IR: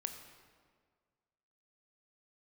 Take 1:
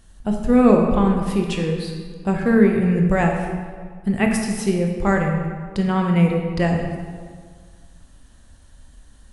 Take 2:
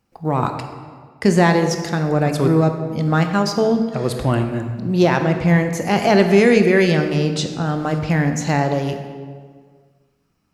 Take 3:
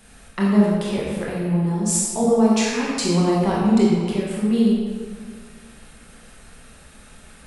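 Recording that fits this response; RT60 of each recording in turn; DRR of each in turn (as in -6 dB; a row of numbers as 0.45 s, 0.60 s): 2; 1.8 s, 1.8 s, 1.8 s; 1.5 dB, 6.0 dB, -5.5 dB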